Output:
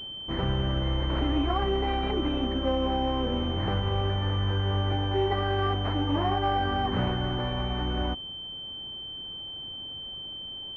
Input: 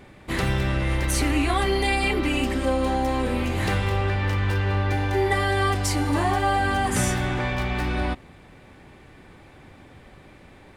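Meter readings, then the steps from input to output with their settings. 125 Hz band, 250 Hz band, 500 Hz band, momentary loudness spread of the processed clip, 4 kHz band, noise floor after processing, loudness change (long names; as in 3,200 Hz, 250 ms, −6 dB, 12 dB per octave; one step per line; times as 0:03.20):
−3.5 dB, −3.5 dB, −3.5 dB, 9 LU, +2.5 dB, −39 dBFS, −5.0 dB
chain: switching amplifier with a slow clock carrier 3,100 Hz
level −3.5 dB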